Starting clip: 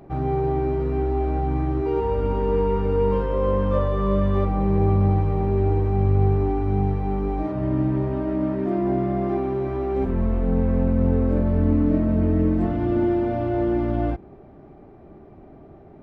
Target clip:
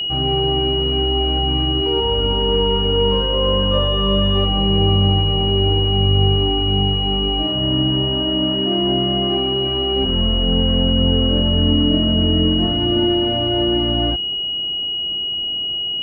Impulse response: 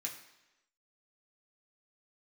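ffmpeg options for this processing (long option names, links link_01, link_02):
-af "aeval=exprs='val(0)+0.0708*sin(2*PI*2900*n/s)':channel_layout=same,volume=3dB"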